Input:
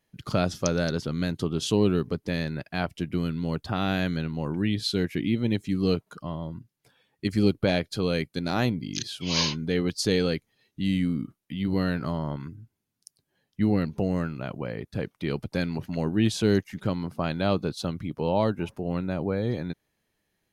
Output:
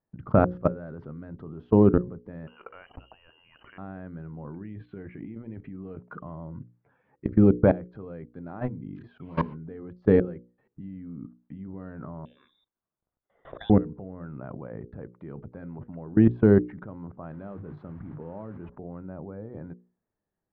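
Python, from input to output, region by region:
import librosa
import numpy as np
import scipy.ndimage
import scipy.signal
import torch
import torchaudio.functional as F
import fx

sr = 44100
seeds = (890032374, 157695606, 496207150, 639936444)

y = fx.chain(x, sr, fx.freq_invert(carrier_hz=3000),
    fx.env_flatten(amount_pct=70), at=(2.47, 3.78))
y = fx.chain(y, sr, fx.lowpass(hz=4200.0, slope=12),
    fx.peak_eq(hz=2400.0, db=8.0, octaves=1.1),
    fx.over_compress(threshold_db=-29.0, ratio=-0.5), at=(4.47, 7.25))
y = fx.chain(y, sr, fx.freq_invert(carrier_hz=3700),
    fx.low_shelf(hz=450.0, db=6.5),
    fx.pre_swell(db_per_s=150.0), at=(12.25, 13.7))
y = fx.chain(y, sr, fx.peak_eq(hz=820.0, db=-5.5, octaves=1.4),
    fx.mod_noise(seeds[0], snr_db=11),
    fx.hum_notches(base_hz=50, count=3), at=(17.32, 18.69))
y = fx.level_steps(y, sr, step_db=23)
y = scipy.signal.sosfilt(scipy.signal.butter(4, 1400.0, 'lowpass', fs=sr, output='sos'), y)
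y = fx.hum_notches(y, sr, base_hz=60, count=9)
y = F.gain(torch.from_numpy(y), 8.0).numpy()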